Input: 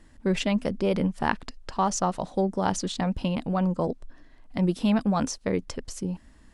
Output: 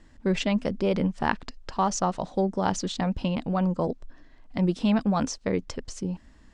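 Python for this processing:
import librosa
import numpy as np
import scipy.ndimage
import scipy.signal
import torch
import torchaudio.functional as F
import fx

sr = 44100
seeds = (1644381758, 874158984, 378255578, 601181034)

y = scipy.signal.sosfilt(scipy.signal.butter(4, 7700.0, 'lowpass', fs=sr, output='sos'), x)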